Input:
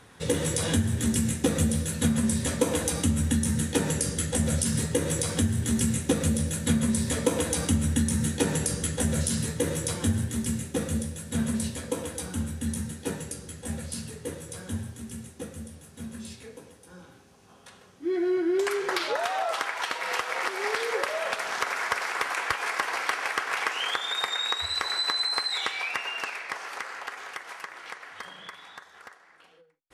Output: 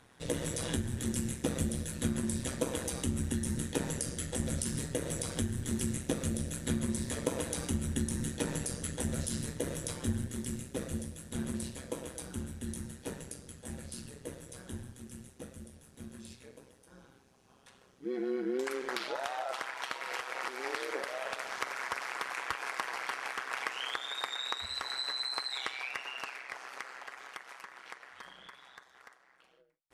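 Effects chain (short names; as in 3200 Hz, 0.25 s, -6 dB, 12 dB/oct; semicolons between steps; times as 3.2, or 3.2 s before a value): AM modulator 130 Hz, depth 65%; gain -5 dB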